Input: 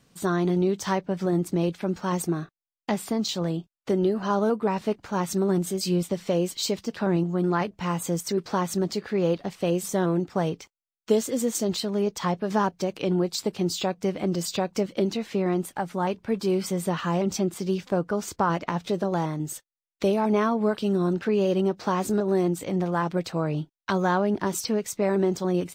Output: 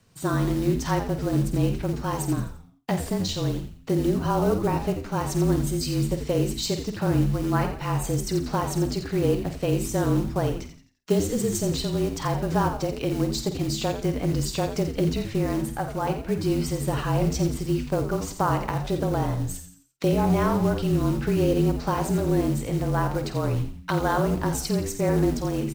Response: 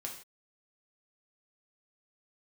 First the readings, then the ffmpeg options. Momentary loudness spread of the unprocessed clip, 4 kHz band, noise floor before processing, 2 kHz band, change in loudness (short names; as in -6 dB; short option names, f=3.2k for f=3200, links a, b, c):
5 LU, 0.0 dB, under -85 dBFS, 0.0 dB, +1.0 dB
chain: -filter_complex "[0:a]acrusher=bits=5:mode=log:mix=0:aa=0.000001,lowshelf=f=240:g=4.5,bandreject=f=60:t=h:w=6,bandreject=f=120:t=h:w=6,bandreject=f=180:t=h:w=6,bandreject=f=240:t=h:w=6,bandreject=f=300:t=h:w=6,bandreject=f=360:t=h:w=6,bandreject=f=420:t=h:w=6,afreqshift=-31,bandreject=f=3.4k:w=24,asplit=2[a][b];[b]adelay=49,volume=-10dB[c];[a][c]amix=inputs=2:normalize=0,asplit=5[d][e][f][g][h];[e]adelay=86,afreqshift=-100,volume=-9dB[i];[f]adelay=172,afreqshift=-200,volume=-17dB[j];[g]adelay=258,afreqshift=-300,volume=-24.9dB[k];[h]adelay=344,afreqshift=-400,volume=-32.9dB[l];[d][i][j][k][l]amix=inputs=5:normalize=0,volume=-1dB"